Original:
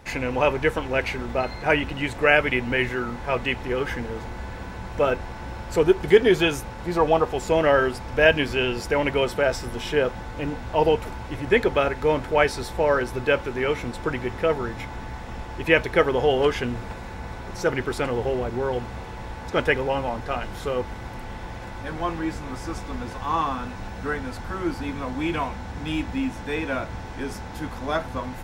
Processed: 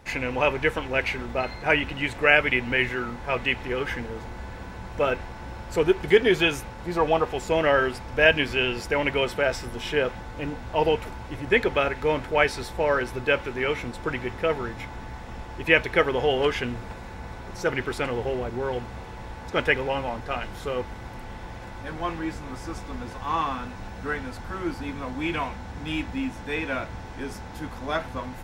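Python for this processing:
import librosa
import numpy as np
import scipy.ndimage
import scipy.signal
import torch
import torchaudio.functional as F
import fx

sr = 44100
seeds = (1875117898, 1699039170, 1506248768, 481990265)

y = fx.dynamic_eq(x, sr, hz=2400.0, q=1.0, threshold_db=-37.0, ratio=4.0, max_db=5)
y = y * 10.0 ** (-3.0 / 20.0)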